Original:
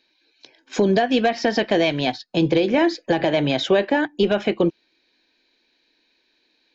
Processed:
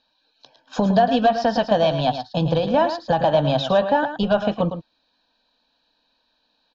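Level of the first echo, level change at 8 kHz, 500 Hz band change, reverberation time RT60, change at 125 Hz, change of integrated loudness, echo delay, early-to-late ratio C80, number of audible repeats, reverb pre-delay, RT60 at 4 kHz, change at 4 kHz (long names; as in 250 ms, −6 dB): −9.5 dB, can't be measured, +0.5 dB, no reverb audible, +3.5 dB, 0.0 dB, 110 ms, no reverb audible, 1, no reverb audible, no reverb audible, −2.5 dB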